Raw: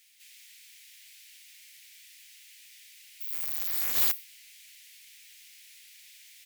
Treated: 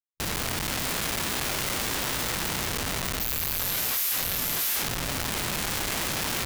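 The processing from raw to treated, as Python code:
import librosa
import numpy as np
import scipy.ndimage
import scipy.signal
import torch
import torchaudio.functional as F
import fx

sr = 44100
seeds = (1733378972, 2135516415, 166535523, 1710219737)

p1 = fx.bin_compress(x, sr, power=0.6)
p2 = scipy.signal.sosfilt(scipy.signal.cheby2(4, 60, [220.0, 2500.0], 'bandstop', fs=sr, output='sos'), p1)
p3 = p2 + 10.0 ** (-5.0 / 20.0) * np.pad(p2, (int(640 * sr / 1000.0), 0))[:len(p2)]
p4 = fx.rider(p3, sr, range_db=4, speed_s=2.0)
p5 = p3 + F.gain(torch.from_numpy(p4), -2.0).numpy()
p6 = fx.schmitt(p5, sr, flips_db=-29.0)
p7 = fx.formant_shift(p6, sr, semitones=-5)
p8 = fx.tilt_shelf(p7, sr, db=-8.0, hz=1100.0)
p9 = fx.env_flatten(p8, sr, amount_pct=70)
y = F.gain(torch.from_numpy(p9), -6.0).numpy()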